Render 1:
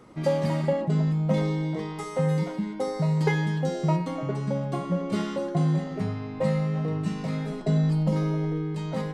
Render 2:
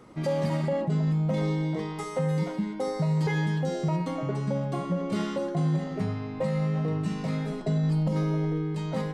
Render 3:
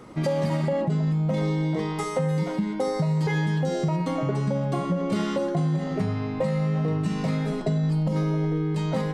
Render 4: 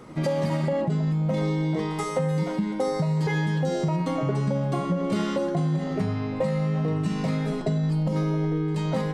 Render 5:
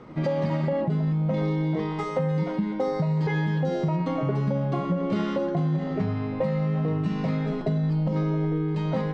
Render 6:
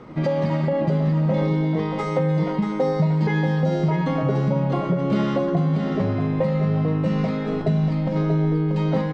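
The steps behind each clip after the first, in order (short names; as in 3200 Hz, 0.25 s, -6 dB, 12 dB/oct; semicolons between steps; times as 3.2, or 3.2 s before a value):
limiter -19 dBFS, peak gain reduction 8 dB
compressor, threshold -27 dBFS, peak gain reduction 5 dB; gain +6 dB
reverse echo 80 ms -21 dB
air absorption 170 m
echo 0.635 s -7 dB; gain +3.5 dB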